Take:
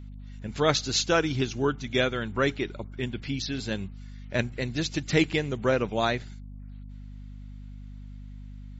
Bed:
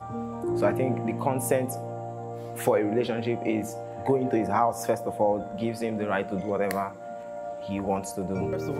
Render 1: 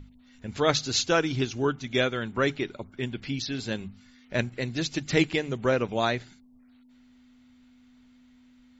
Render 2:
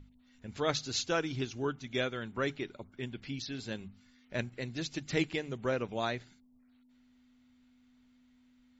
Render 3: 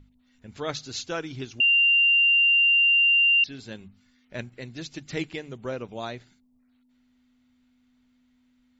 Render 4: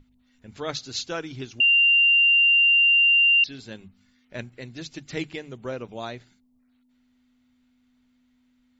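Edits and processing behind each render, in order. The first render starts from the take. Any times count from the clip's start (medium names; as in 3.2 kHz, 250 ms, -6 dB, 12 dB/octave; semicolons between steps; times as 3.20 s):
hum notches 50/100/150/200 Hz
trim -8 dB
1.60–3.44 s: bleep 2.78 kHz -16 dBFS; 5.54–6.18 s: peaking EQ 1.8 kHz -4 dB 0.92 oct
hum notches 50/100/150/200 Hz; dynamic bell 4.3 kHz, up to +5 dB, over -38 dBFS, Q 1.5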